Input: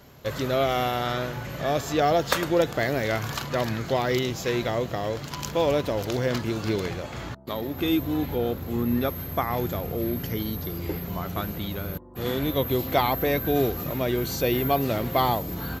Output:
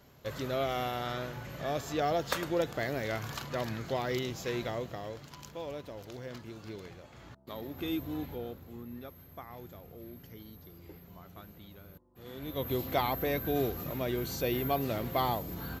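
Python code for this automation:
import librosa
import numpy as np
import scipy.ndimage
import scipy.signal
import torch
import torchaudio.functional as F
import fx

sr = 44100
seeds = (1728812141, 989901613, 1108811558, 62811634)

y = fx.gain(x, sr, db=fx.line((4.66, -8.5), (5.61, -17.5), (7.17, -17.5), (7.59, -10.5), (8.19, -10.5), (8.89, -20.0), (12.26, -20.0), (12.69, -7.5)))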